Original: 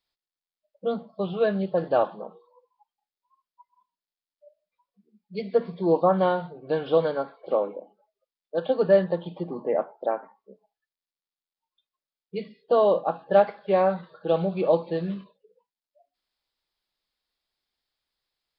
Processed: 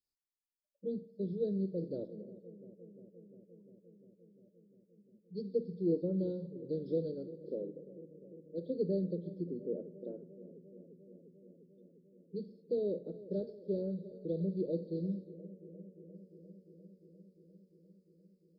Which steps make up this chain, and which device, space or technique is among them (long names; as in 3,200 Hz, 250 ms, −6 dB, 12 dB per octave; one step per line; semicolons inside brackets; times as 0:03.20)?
inverse Chebyshev band-stop filter 730–3,000 Hz, stop band 40 dB
dub delay into a spring reverb (feedback echo with a low-pass in the loop 350 ms, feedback 82%, low-pass 1,200 Hz, level −16.5 dB; spring reverb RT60 1.1 s, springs 52 ms, DRR 17.5 dB)
level −6.5 dB